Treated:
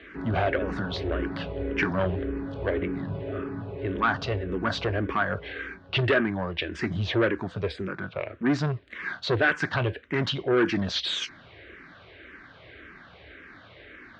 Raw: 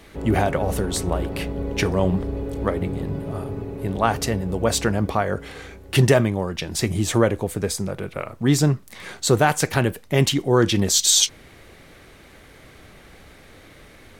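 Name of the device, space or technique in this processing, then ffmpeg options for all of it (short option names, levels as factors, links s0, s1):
barber-pole phaser into a guitar amplifier: -filter_complex "[0:a]asplit=2[s0][s1];[s1]afreqshift=-1.8[s2];[s0][s2]amix=inputs=2:normalize=1,asoftclip=type=tanh:threshold=0.119,highpass=81,equalizer=f=89:t=q:w=4:g=-3,equalizer=f=140:t=q:w=4:g=-8,equalizer=f=210:t=q:w=4:g=-6,equalizer=f=480:t=q:w=4:g=-4,equalizer=f=820:t=q:w=4:g=-6,equalizer=f=1600:t=q:w=4:g=7,lowpass=f=3600:w=0.5412,lowpass=f=3600:w=1.3066,volume=1.41"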